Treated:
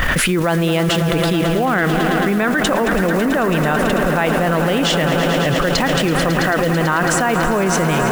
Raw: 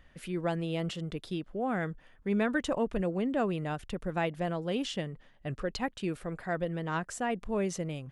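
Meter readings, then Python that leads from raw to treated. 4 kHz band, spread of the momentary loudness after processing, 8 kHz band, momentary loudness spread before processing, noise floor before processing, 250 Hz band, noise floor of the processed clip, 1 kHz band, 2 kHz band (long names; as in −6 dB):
+21.0 dB, 1 LU, +22.0 dB, 8 LU, −60 dBFS, +15.5 dB, −18 dBFS, +18.5 dB, +21.0 dB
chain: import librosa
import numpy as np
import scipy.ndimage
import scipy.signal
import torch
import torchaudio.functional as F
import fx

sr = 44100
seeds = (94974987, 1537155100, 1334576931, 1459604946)

p1 = fx.block_float(x, sr, bits=5)
p2 = fx.peak_eq(p1, sr, hz=1400.0, db=8.0, octaves=1.5)
p3 = fx.level_steps(p2, sr, step_db=18)
p4 = p2 + (p3 * librosa.db_to_amplitude(-1.0))
p5 = fx.high_shelf(p4, sr, hz=6900.0, db=4.5)
p6 = fx.echo_swell(p5, sr, ms=110, loudest=5, wet_db=-14)
p7 = fx.env_flatten(p6, sr, amount_pct=100)
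y = p7 * librosa.db_to_amplitude(4.0)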